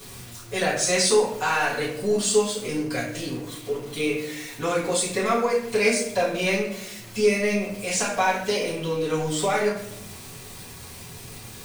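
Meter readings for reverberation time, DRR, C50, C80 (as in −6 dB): 0.75 s, −8.5 dB, 5.0 dB, 8.0 dB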